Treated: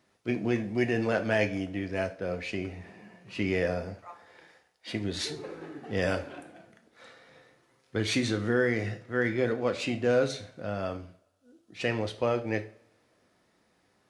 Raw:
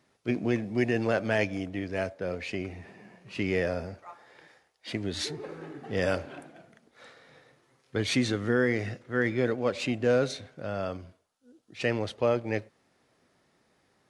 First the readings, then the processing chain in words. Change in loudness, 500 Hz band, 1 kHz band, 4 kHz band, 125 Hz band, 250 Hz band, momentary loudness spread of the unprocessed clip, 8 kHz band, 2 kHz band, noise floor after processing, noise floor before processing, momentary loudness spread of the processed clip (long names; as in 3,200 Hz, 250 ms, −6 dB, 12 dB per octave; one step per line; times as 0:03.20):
−0.5 dB, −0.5 dB, 0.0 dB, 0.0 dB, −0.5 dB, −0.5 dB, 15 LU, 0.0 dB, 0.0 dB, −69 dBFS, −69 dBFS, 15 LU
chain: coupled-rooms reverb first 0.39 s, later 1.7 s, from −27 dB, DRR 6.5 dB
level −1 dB